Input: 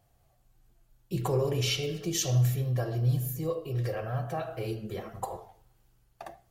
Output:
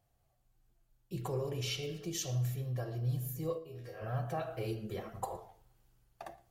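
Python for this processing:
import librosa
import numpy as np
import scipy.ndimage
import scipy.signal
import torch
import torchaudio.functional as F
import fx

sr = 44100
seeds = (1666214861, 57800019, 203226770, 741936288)

p1 = fx.rider(x, sr, range_db=3, speed_s=0.5)
p2 = fx.comb_fb(p1, sr, f0_hz=81.0, decay_s=0.37, harmonics='all', damping=0.0, mix_pct=90, at=(3.57, 4.0), fade=0.02)
p3 = p2 + fx.echo_single(p2, sr, ms=115, db=-23.0, dry=0)
y = p3 * 10.0 ** (-6.5 / 20.0)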